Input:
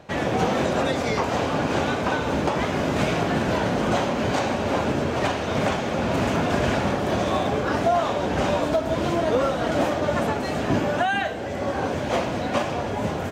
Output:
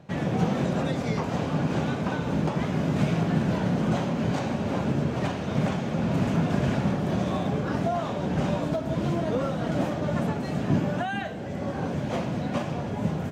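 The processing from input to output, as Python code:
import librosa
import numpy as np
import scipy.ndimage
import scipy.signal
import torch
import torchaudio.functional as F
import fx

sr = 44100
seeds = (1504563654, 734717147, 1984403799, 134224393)

y = fx.peak_eq(x, sr, hz=160.0, db=13.5, octaves=1.3)
y = F.gain(torch.from_numpy(y), -8.5).numpy()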